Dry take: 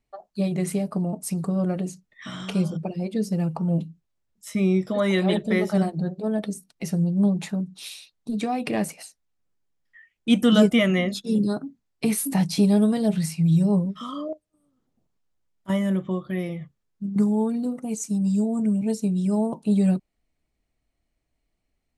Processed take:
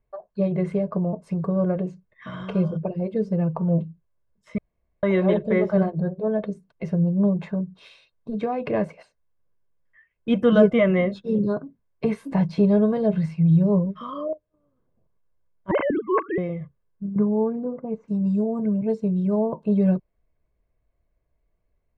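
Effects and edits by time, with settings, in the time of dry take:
4.58–5.03 s: room tone
15.71–16.38 s: formants replaced by sine waves
17.14–18.08 s: low-pass 1.6 kHz
whole clip: low-pass 1.5 kHz 12 dB/octave; comb 1.9 ms, depth 55%; trim +2.5 dB

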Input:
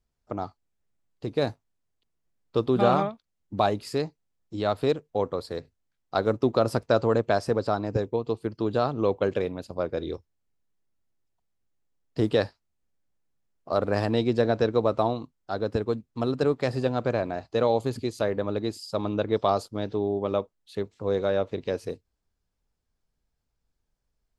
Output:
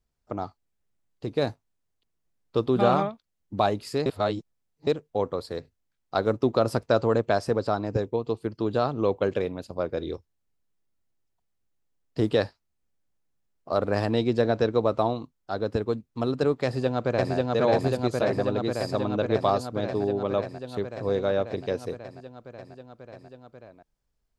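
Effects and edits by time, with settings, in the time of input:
4.06–4.87 s: reverse
16.64–17.34 s: echo throw 540 ms, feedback 80%, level -0.5 dB

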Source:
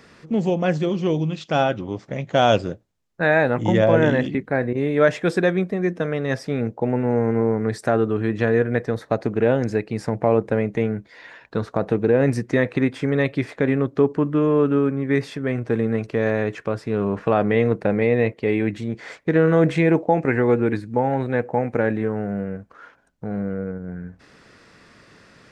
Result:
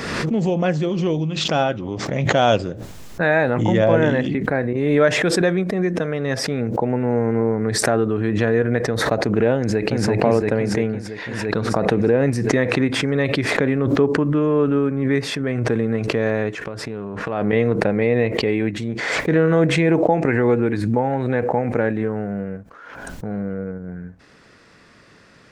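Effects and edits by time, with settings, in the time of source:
9.57–10.05 s: echo throw 340 ms, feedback 65%, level -0.5 dB
16.65–17.53 s: compression, threshold -25 dBFS
whole clip: swell ahead of each attack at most 33 dB/s

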